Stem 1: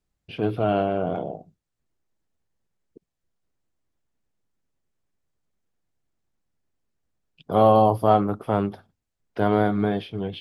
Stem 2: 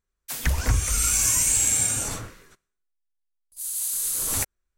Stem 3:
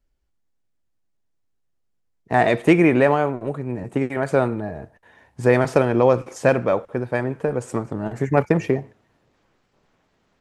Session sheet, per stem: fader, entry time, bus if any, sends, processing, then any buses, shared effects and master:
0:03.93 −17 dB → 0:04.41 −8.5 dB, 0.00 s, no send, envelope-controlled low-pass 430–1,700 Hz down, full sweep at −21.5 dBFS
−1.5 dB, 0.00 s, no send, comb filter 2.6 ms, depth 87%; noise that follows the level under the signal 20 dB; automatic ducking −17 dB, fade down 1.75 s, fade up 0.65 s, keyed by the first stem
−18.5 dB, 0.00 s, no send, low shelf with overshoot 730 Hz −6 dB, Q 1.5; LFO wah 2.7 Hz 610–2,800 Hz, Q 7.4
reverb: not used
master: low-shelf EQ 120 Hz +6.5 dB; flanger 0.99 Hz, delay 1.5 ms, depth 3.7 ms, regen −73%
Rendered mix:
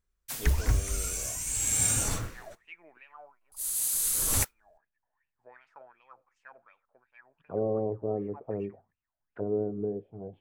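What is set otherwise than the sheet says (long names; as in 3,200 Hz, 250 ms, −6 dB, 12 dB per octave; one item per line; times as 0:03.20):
stem 1 −17.0 dB → −25.5 dB
stem 2: missing comb filter 2.6 ms, depth 87%
master: missing flanger 0.99 Hz, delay 1.5 ms, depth 3.7 ms, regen −73%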